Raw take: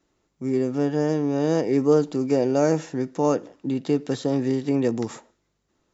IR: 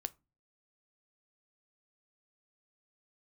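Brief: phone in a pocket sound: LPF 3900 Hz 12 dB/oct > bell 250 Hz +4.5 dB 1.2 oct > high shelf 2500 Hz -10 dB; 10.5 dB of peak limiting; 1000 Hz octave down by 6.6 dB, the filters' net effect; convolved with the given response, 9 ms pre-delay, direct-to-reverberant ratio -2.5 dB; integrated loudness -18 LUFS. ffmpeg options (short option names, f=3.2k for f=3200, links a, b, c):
-filter_complex "[0:a]equalizer=f=1k:t=o:g=-8.5,alimiter=limit=-18.5dB:level=0:latency=1,asplit=2[a][b];[1:a]atrim=start_sample=2205,adelay=9[c];[b][c]afir=irnorm=-1:irlink=0,volume=4dB[d];[a][d]amix=inputs=2:normalize=0,lowpass=3.9k,equalizer=f=250:t=o:w=1.2:g=4.5,highshelf=f=2.5k:g=-10,volume=5dB"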